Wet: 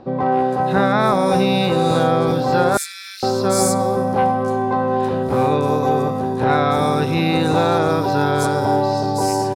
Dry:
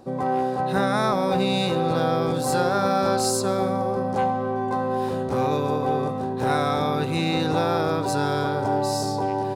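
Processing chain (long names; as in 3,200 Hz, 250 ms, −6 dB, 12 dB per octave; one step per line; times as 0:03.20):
0:02.77–0:03.23: Butterworth high-pass 1,900 Hz 48 dB per octave
multiband delay without the direct sound lows, highs 320 ms, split 4,500 Hz
level +6 dB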